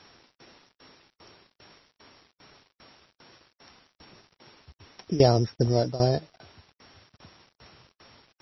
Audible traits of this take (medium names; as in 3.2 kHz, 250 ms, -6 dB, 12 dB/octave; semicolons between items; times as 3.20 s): a buzz of ramps at a fixed pitch in blocks of 8 samples; tremolo saw down 2.5 Hz, depth 90%; a quantiser's noise floor 10-bit, dither none; MP3